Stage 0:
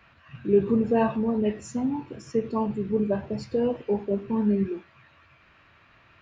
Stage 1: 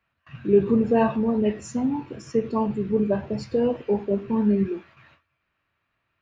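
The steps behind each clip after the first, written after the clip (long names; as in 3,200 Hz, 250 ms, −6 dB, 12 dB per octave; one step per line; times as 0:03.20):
noise gate with hold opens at −45 dBFS
level +2.5 dB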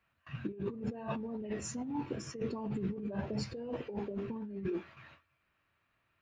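compressor whose output falls as the input rises −30 dBFS, ratio −1
level −8.5 dB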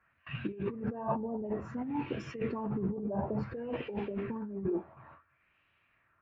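auto-filter low-pass sine 0.57 Hz 780–2,900 Hz
level +2 dB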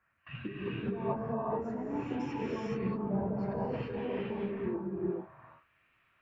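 reverb whose tail is shaped and stops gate 460 ms rising, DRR −4 dB
level −4 dB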